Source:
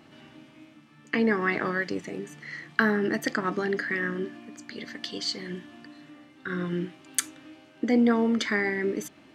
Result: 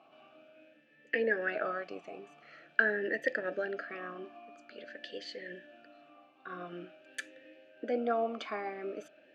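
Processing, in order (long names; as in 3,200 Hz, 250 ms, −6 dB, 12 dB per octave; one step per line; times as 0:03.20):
formant filter swept between two vowels a-e 0.47 Hz
level +6 dB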